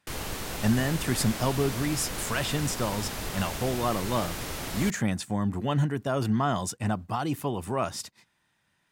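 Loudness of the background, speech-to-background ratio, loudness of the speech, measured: -34.5 LUFS, 5.5 dB, -29.0 LUFS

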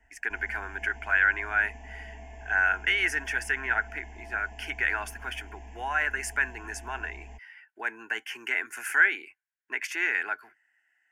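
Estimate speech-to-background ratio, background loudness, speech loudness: 19.0 dB, -47.0 LUFS, -28.0 LUFS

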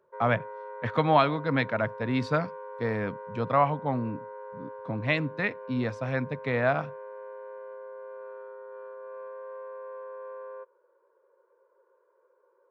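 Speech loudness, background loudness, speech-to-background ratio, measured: -28.5 LUFS, -42.0 LUFS, 13.5 dB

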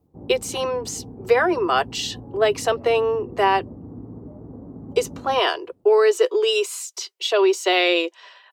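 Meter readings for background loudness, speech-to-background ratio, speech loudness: -39.5 LUFS, 18.5 dB, -21.0 LUFS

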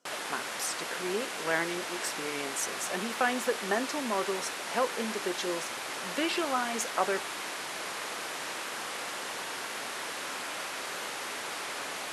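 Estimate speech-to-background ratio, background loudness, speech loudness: 2.0 dB, -35.5 LUFS, -33.5 LUFS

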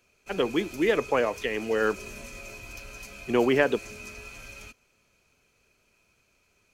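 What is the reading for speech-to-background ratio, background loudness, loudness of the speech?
15.5 dB, -42.0 LUFS, -26.5 LUFS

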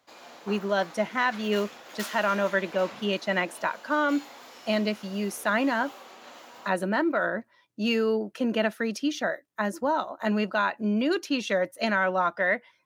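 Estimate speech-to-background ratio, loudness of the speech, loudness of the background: 17.0 dB, -27.5 LUFS, -44.5 LUFS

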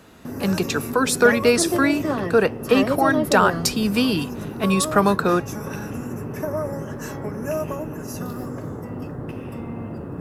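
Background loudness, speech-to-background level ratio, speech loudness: -28.5 LUFS, 8.0 dB, -20.5 LUFS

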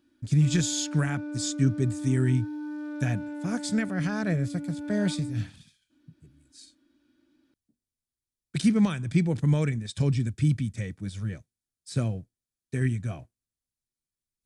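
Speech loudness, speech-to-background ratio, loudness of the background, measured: -28.0 LUFS, 8.5 dB, -36.5 LUFS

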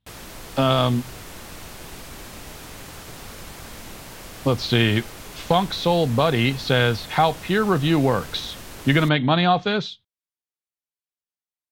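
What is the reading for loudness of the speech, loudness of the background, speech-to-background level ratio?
-21.0 LUFS, -38.5 LUFS, 17.5 dB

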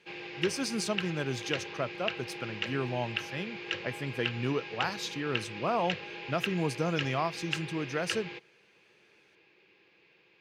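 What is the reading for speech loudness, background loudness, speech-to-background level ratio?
-34.5 LUFS, -37.5 LUFS, 3.0 dB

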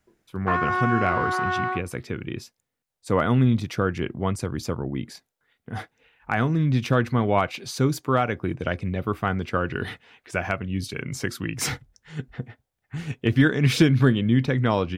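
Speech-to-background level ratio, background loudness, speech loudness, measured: 1.5 dB, -26.0 LUFS, -24.5 LUFS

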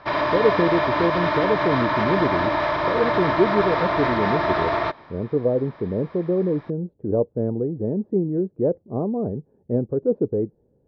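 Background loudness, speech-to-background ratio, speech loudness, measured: -22.0 LUFS, -2.5 dB, -24.5 LUFS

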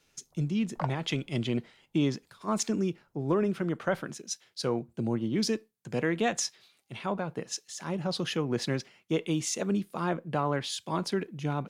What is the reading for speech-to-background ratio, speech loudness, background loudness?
8.5 dB, -31.5 LUFS, -40.0 LUFS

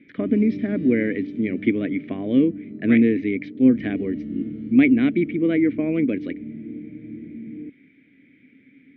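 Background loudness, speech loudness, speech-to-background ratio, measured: -34.0 LUFS, -21.5 LUFS, 12.5 dB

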